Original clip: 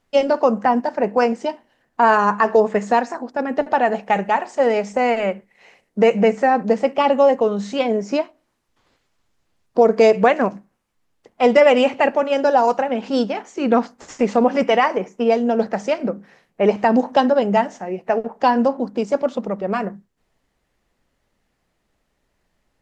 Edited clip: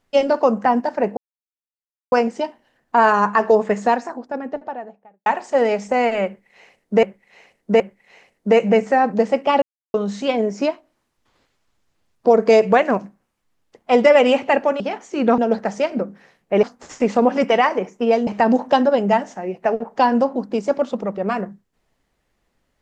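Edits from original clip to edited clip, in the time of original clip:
1.17 s: insert silence 0.95 s
2.78–4.31 s: studio fade out
5.31–6.08 s: loop, 3 plays
7.13–7.45 s: mute
12.31–13.24 s: delete
15.46–16.71 s: move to 13.82 s

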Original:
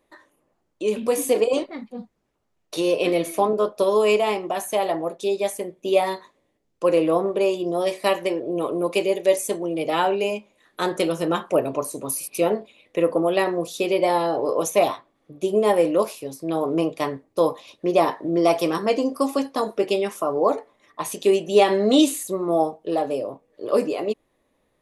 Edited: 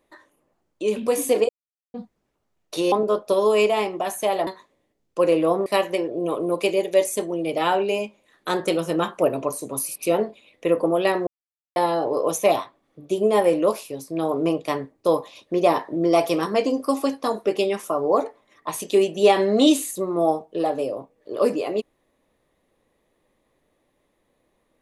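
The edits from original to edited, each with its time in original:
1.49–1.94 s: mute
2.92–3.42 s: delete
4.97–6.12 s: delete
7.31–7.98 s: delete
13.59–14.08 s: mute

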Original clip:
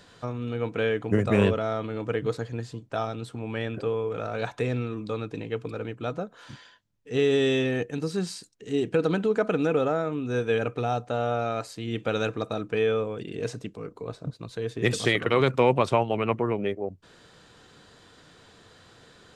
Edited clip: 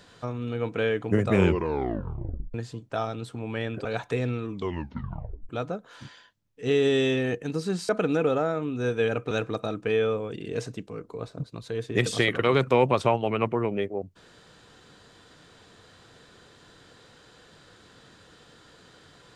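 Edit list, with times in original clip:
1.33 s: tape stop 1.21 s
3.85–4.33 s: delete
4.99 s: tape stop 0.98 s
8.37–9.39 s: delete
10.81–12.18 s: delete

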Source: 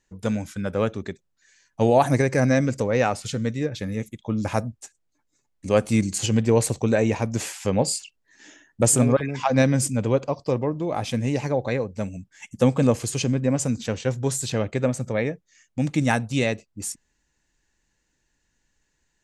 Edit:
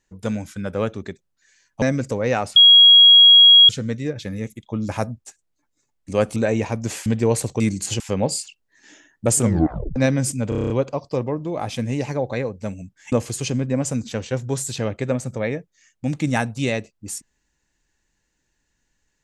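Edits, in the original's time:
1.82–2.51 s: delete
3.25 s: add tone 3.3 kHz -6 dBFS 1.13 s
5.92–6.32 s: swap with 6.86–7.56 s
8.97 s: tape stop 0.55 s
10.05 s: stutter 0.03 s, 8 plays
12.47–12.86 s: delete

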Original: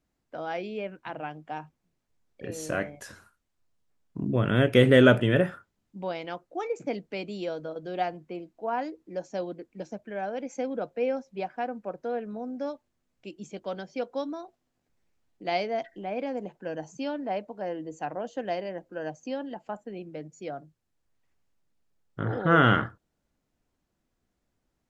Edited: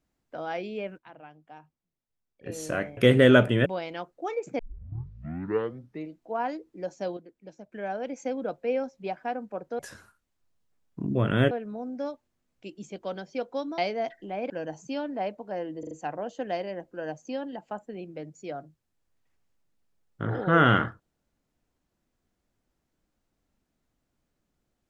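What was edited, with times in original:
0.98–2.46 s: gain -12 dB
2.97–4.69 s: move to 12.12 s
5.38–5.99 s: delete
6.92 s: tape start 1.61 s
9.50–10.05 s: gain -8.5 dB
14.39–15.52 s: delete
16.24–16.60 s: delete
17.89 s: stutter 0.04 s, 4 plays

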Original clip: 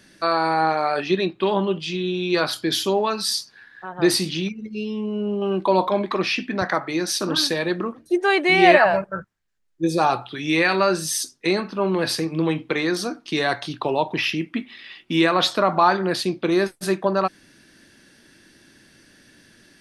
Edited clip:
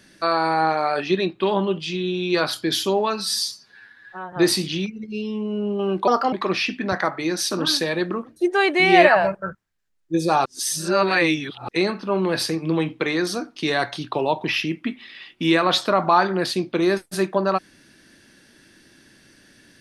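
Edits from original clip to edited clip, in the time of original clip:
3.20–3.95 s: stretch 1.5×
5.70–6.02 s: speed 128%
10.15–11.38 s: reverse

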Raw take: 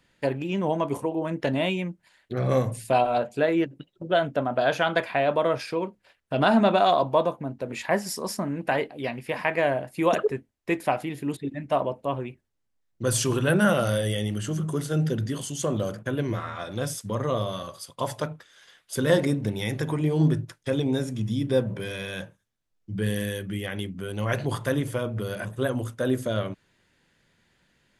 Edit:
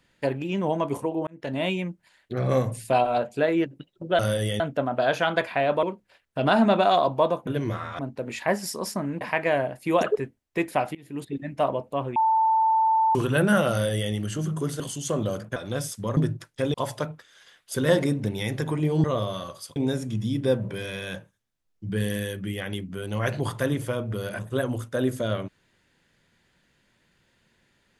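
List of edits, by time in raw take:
1.27–1.69 s: fade in
5.42–5.78 s: delete
8.64–9.33 s: delete
11.07–11.46 s: fade in, from -23.5 dB
12.28–13.27 s: bleep 888 Hz -17.5 dBFS
13.83–14.24 s: copy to 4.19 s
14.92–15.34 s: delete
16.10–16.62 s: move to 7.42 s
17.23–17.95 s: swap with 20.25–20.82 s

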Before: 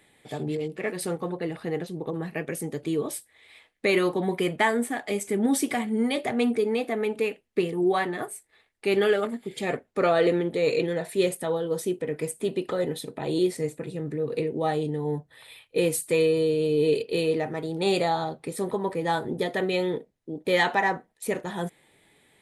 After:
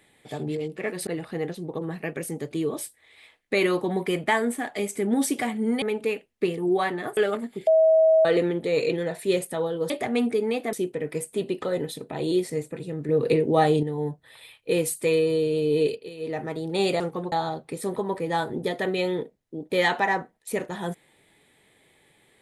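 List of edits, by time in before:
1.07–1.39 s: move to 18.07 s
6.14–6.97 s: move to 11.80 s
8.32–9.07 s: delete
9.57–10.15 s: bleep 641 Hz -14 dBFS
14.16–14.90 s: gain +6.5 dB
16.93–17.48 s: dip -15.5 dB, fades 0.24 s

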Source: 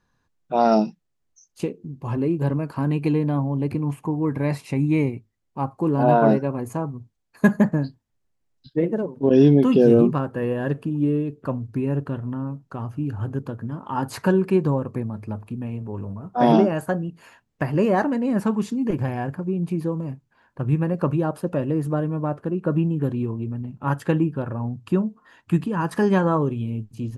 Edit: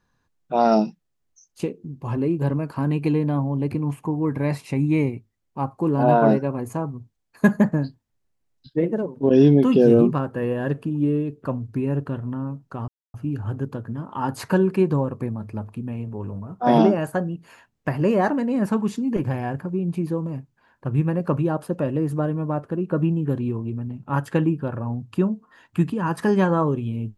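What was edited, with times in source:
12.88 s: insert silence 0.26 s

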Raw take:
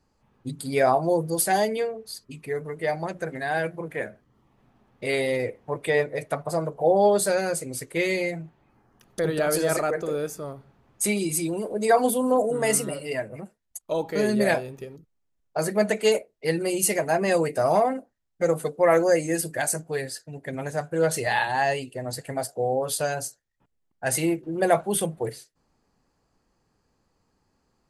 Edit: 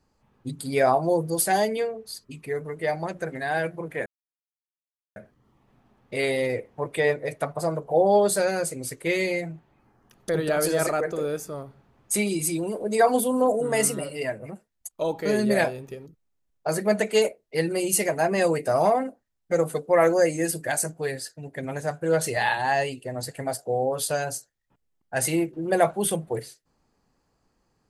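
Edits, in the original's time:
4.06 s: insert silence 1.10 s

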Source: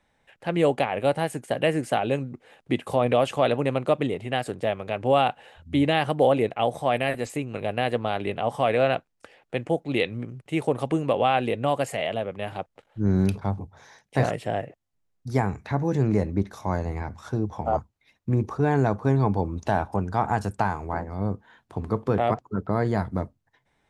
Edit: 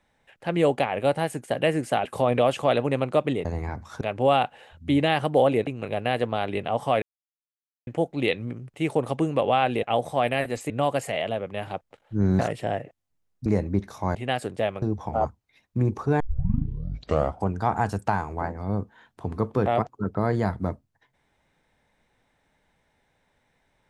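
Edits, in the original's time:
2.05–2.79 s: delete
4.19–4.86 s: swap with 16.78–17.34 s
6.52–7.39 s: move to 11.55 s
8.74–9.59 s: mute
13.24–14.22 s: delete
15.29–16.09 s: delete
18.72 s: tape start 1.28 s

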